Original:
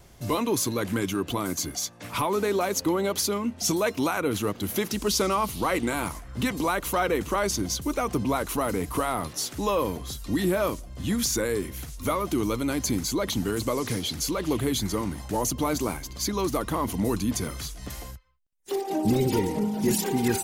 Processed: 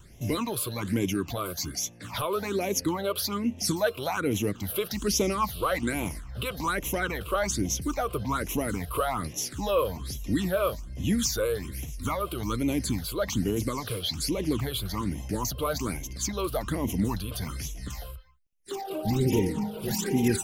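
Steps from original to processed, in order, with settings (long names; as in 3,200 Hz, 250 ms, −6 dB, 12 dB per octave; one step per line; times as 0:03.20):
reversed playback
upward compression, threshold −41 dBFS
reversed playback
all-pass phaser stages 8, 1.2 Hz, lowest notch 240–1,400 Hz
level +1 dB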